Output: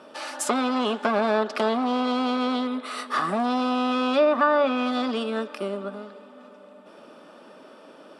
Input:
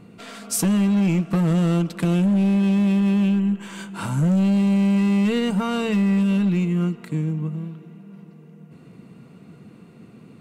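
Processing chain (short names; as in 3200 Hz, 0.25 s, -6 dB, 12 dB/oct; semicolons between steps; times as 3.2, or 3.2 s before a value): speaker cabinet 460–7300 Hz, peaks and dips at 480 Hz +5 dB, 940 Hz +8 dB, 1500 Hz -6 dB, 2700 Hz -4 dB, 5100 Hz -6 dB; varispeed +27%; treble ducked by the level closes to 850 Hz, closed at -18 dBFS; gain +6 dB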